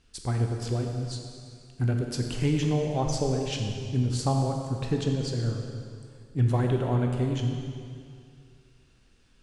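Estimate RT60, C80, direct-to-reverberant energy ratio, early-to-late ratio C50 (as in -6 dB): 2.3 s, 4.5 dB, 2.0 dB, 3.5 dB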